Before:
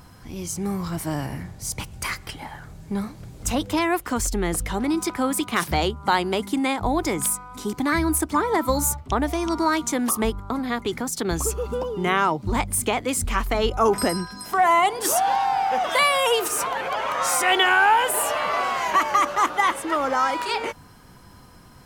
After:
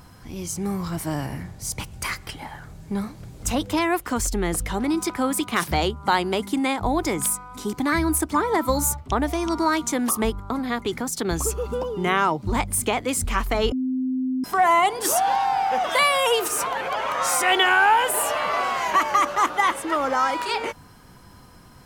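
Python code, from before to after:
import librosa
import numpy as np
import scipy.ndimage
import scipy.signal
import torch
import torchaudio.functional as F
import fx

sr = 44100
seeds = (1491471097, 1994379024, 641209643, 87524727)

y = fx.edit(x, sr, fx.bleep(start_s=13.72, length_s=0.72, hz=258.0, db=-21.5), tone=tone)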